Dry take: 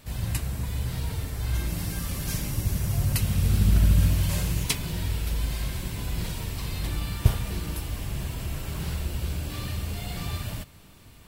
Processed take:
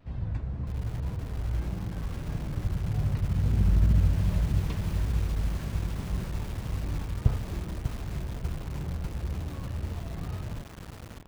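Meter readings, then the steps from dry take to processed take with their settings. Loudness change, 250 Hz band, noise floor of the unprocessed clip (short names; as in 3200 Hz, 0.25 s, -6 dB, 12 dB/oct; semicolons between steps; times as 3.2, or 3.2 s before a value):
-2.5 dB, -2.0 dB, -50 dBFS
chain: tape spacing loss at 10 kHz 41 dB; wow and flutter 120 cents; dynamic EQ 2700 Hz, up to -5 dB, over -56 dBFS, Q 0.85; lo-fi delay 0.595 s, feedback 80%, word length 6-bit, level -7 dB; gain -2.5 dB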